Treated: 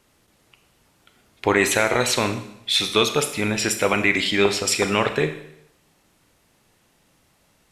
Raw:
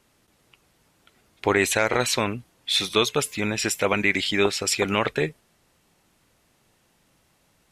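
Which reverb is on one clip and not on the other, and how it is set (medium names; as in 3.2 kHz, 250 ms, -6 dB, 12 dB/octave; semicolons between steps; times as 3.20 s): Schroeder reverb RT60 0.77 s, combs from 26 ms, DRR 8 dB; trim +2 dB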